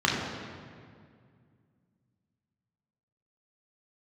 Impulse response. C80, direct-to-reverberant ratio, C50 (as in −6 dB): 3.0 dB, −4.0 dB, 1.5 dB